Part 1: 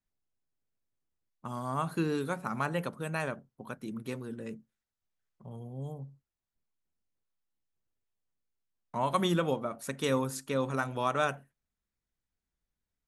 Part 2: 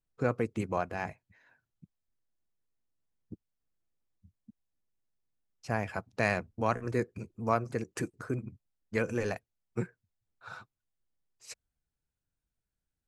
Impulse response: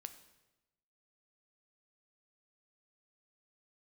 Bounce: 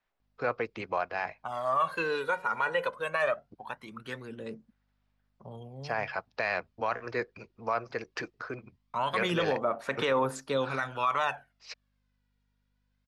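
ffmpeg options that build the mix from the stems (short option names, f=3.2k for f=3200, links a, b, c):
-filter_complex "[0:a]aphaser=in_gain=1:out_gain=1:delay=2.1:decay=0.68:speed=0.2:type=sinusoidal,volume=-1.5dB[a];[1:a]highshelf=f=6.9k:t=q:w=3:g=-11.5,aeval=exprs='val(0)+0.000708*(sin(2*PI*50*n/s)+sin(2*PI*2*50*n/s)/2+sin(2*PI*3*50*n/s)/3+sin(2*PI*4*50*n/s)/4+sin(2*PI*5*50*n/s)/5)':c=same,adelay=200,volume=-2dB[b];[a][b]amix=inputs=2:normalize=0,acrossover=split=500 4300:gain=0.141 1 0.141[c][d][e];[c][d][e]amix=inputs=3:normalize=0,acontrast=89,alimiter=limit=-18.5dB:level=0:latency=1:release=23"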